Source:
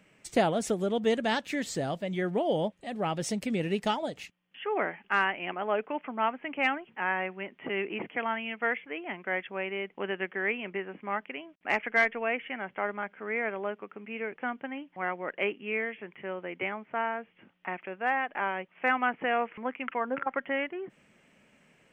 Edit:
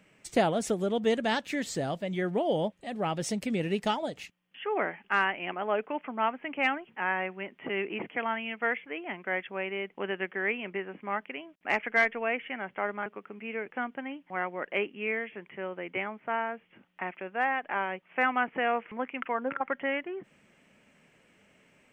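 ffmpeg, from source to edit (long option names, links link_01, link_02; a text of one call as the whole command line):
ffmpeg -i in.wav -filter_complex "[0:a]asplit=2[link_01][link_02];[link_01]atrim=end=13.062[link_03];[link_02]atrim=start=13.718[link_04];[link_03][link_04]acrossfade=duration=0.004:curve1=hsin:curve2=hsin" out.wav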